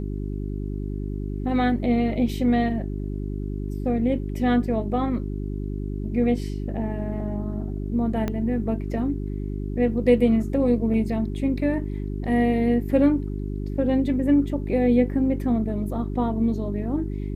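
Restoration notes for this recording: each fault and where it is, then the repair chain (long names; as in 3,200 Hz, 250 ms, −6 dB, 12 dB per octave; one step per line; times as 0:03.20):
mains hum 50 Hz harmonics 8 −29 dBFS
0:08.28: click −14 dBFS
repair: click removal
hum removal 50 Hz, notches 8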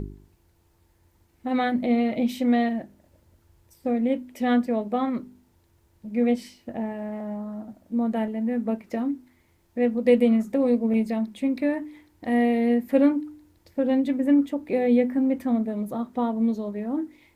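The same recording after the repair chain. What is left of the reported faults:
0:08.28: click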